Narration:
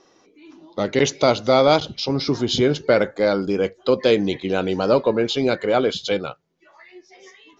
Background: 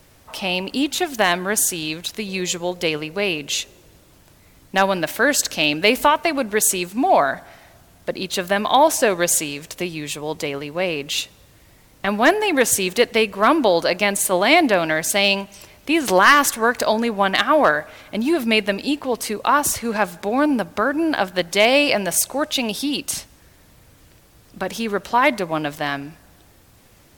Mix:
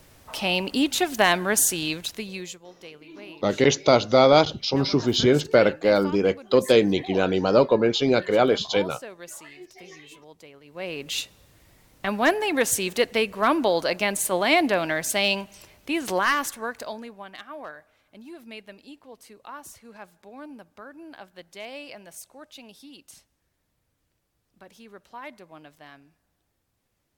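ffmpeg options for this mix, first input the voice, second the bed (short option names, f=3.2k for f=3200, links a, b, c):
-filter_complex "[0:a]adelay=2650,volume=-0.5dB[a];[1:a]volume=15.5dB,afade=t=out:st=1.89:d=0.71:silence=0.0891251,afade=t=in:st=10.63:d=0.48:silence=0.141254,afade=t=out:st=15.44:d=1.81:silence=0.125893[b];[a][b]amix=inputs=2:normalize=0"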